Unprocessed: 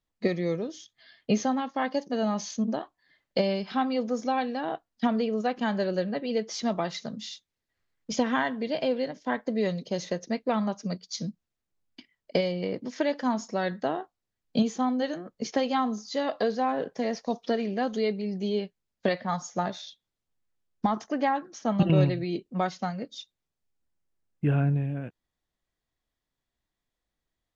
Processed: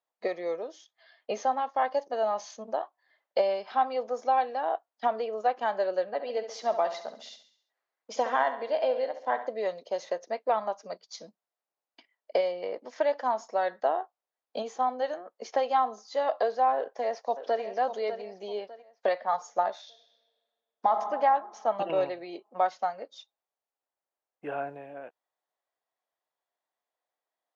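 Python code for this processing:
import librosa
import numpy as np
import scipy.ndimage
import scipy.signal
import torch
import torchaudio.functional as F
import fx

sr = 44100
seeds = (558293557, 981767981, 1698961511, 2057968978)

y = fx.echo_feedback(x, sr, ms=68, feedback_pct=49, wet_db=-11.5, at=(6.05, 9.47))
y = fx.echo_throw(y, sr, start_s=16.76, length_s=0.86, ms=600, feedback_pct=35, wet_db=-10.0)
y = fx.reverb_throw(y, sr, start_s=19.82, length_s=1.13, rt60_s=2.1, drr_db=5.5)
y = scipy.signal.sosfilt(scipy.signal.butter(2, 550.0, 'highpass', fs=sr, output='sos'), y)
y = fx.peak_eq(y, sr, hz=700.0, db=15.0, octaves=2.2)
y = y * 10.0 ** (-9.0 / 20.0)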